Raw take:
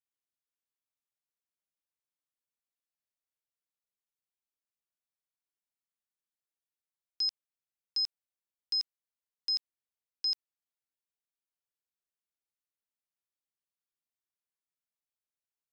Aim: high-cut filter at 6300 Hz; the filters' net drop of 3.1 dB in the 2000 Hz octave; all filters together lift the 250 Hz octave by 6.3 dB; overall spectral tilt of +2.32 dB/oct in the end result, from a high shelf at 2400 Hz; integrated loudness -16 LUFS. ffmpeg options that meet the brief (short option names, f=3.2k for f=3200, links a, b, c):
-af "lowpass=6.3k,equalizer=f=250:t=o:g=8,equalizer=f=2k:t=o:g=-7,highshelf=f=2.4k:g=5,volume=14.5dB"